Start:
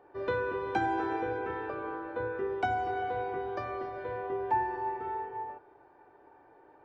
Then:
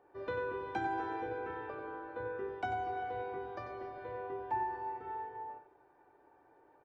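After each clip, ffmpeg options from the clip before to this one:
ffmpeg -i in.wav -af "aecho=1:1:93:0.355,volume=-7dB" out.wav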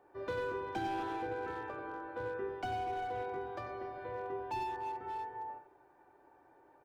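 ffmpeg -i in.wav -filter_complex "[0:a]bandreject=frequency=450:width=13,acrossover=split=580[link_01][link_02];[link_02]asoftclip=type=hard:threshold=-40dB[link_03];[link_01][link_03]amix=inputs=2:normalize=0,volume=1.5dB" out.wav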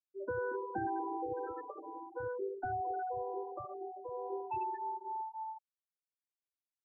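ffmpeg -i in.wav -af "afftfilt=real='re*gte(hypot(re,im),0.0316)':imag='im*gte(hypot(re,im),0.0316)':win_size=1024:overlap=0.75,volume=1dB" out.wav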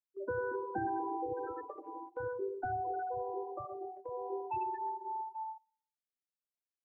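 ffmpeg -i in.wav -filter_complex "[0:a]asplit=2[link_01][link_02];[link_02]adelay=122,lowpass=frequency=970:poles=1,volume=-16.5dB,asplit=2[link_03][link_04];[link_04]adelay=122,lowpass=frequency=970:poles=1,volume=0.34,asplit=2[link_05][link_06];[link_06]adelay=122,lowpass=frequency=970:poles=1,volume=0.34[link_07];[link_01][link_03][link_05][link_07]amix=inputs=4:normalize=0,agate=range=-12dB:threshold=-47dB:ratio=16:detection=peak,volume=1dB" out.wav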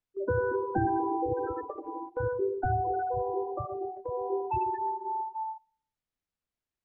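ffmpeg -i in.wav -af "aemphasis=mode=reproduction:type=bsi,volume=6dB" out.wav

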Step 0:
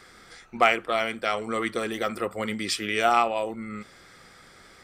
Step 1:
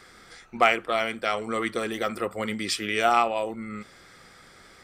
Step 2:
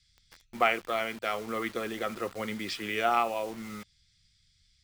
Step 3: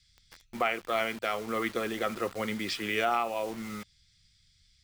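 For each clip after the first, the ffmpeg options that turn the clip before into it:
ffmpeg -i in.wav -af anull out.wav
ffmpeg -i in.wav -filter_complex "[0:a]lowpass=4600,acrossover=split=120|3400[link_01][link_02][link_03];[link_02]acrusher=bits=6:mix=0:aa=0.000001[link_04];[link_01][link_04][link_03]amix=inputs=3:normalize=0,volume=-5dB" out.wav
ffmpeg -i in.wav -af "alimiter=limit=-18dB:level=0:latency=1:release=327,volume=2dB" out.wav

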